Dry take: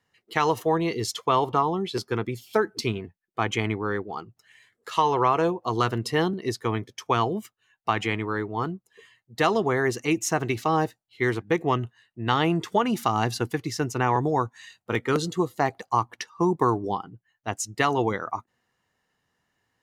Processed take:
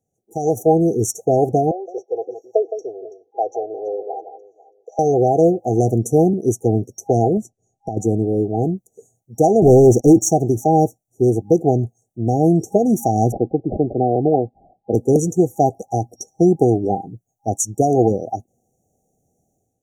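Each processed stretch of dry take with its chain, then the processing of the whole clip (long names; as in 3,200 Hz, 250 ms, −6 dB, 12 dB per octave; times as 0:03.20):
0:01.71–0:04.99: elliptic band-pass filter 490–4,100 Hz + delay that swaps between a low-pass and a high-pass 165 ms, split 1,700 Hz, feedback 50%, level −9.5 dB
0:07.37–0:07.97: low-pass filter 6,600 Hz + low-shelf EQ 460 Hz +5.5 dB + downward compressor 10 to 1, threshold −28 dBFS
0:09.62–0:10.30: low-pass filter 1,700 Hz 6 dB per octave + leveller curve on the samples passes 3
0:13.32–0:14.94: parametric band 80 Hz −11 dB 1.6 octaves + bad sample-rate conversion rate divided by 8×, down none, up filtered
whole clip: brick-wall band-stop 810–5,600 Hz; automatic gain control gain up to 11.5 dB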